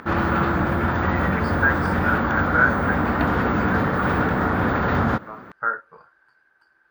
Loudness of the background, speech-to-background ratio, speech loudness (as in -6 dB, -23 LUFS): -21.5 LUFS, -4.0 dB, -25.5 LUFS